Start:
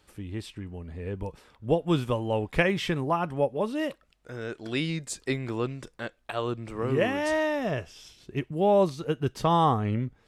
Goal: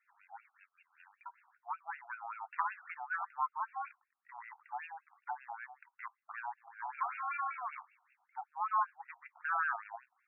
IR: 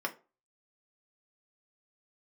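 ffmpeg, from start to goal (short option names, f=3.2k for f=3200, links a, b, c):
-filter_complex "[0:a]aeval=exprs='val(0)*sin(2*PI*480*n/s)':c=same,asettb=1/sr,asplit=3[a][b][c];[a]atrim=end=0.564[d];[b]atrim=start=0.56:end=1.26,asetpts=PTS-STARTPTS,afade=t=in:d=0.004:c=qsin,afade=t=out:st=0.696:d=0.004:c=qsin,lowpass=f=3.2k:t=q:w=0.5098,lowpass=f=3.2k:t=q:w=0.6013,lowpass=f=3.2k:t=q:w=0.9,lowpass=f=3.2k:t=q:w=2.563,afreqshift=-3800[e];[c]atrim=start=1.256[f];[d][e]acrossfade=d=0.004:c1=hsin:c2=qsin[g];[g][f]acrossfade=d=0.004:c1=qsin:c2=hsin,afftfilt=real='re*between(b*sr/1024,960*pow(2000/960,0.5+0.5*sin(2*PI*5.2*pts/sr))/1.41,960*pow(2000/960,0.5+0.5*sin(2*PI*5.2*pts/sr))*1.41)':imag='im*between(b*sr/1024,960*pow(2000/960,0.5+0.5*sin(2*PI*5.2*pts/sr))/1.41,960*pow(2000/960,0.5+0.5*sin(2*PI*5.2*pts/sr))*1.41)':win_size=1024:overlap=0.75,volume=-3dB"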